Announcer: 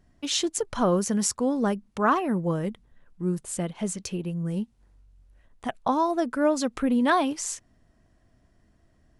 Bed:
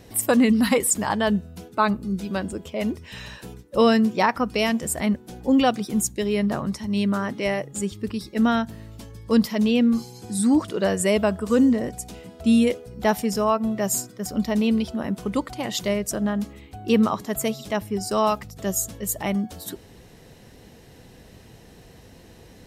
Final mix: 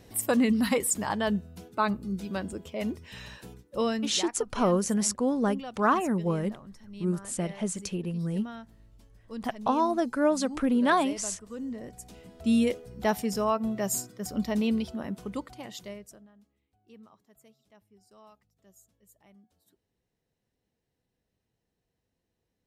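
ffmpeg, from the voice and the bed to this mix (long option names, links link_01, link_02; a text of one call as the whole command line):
ffmpeg -i stem1.wav -i stem2.wav -filter_complex "[0:a]adelay=3800,volume=-1.5dB[link_01];[1:a]volume=9dB,afade=type=out:start_time=3.35:duration=0.98:silence=0.188365,afade=type=in:start_time=11.6:duration=1.01:silence=0.177828,afade=type=out:start_time=14.65:duration=1.62:silence=0.0375837[link_02];[link_01][link_02]amix=inputs=2:normalize=0" out.wav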